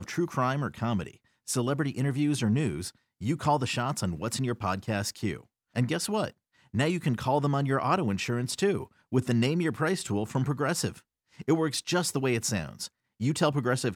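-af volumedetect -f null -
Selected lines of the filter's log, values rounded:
mean_volume: -28.9 dB
max_volume: -11.9 dB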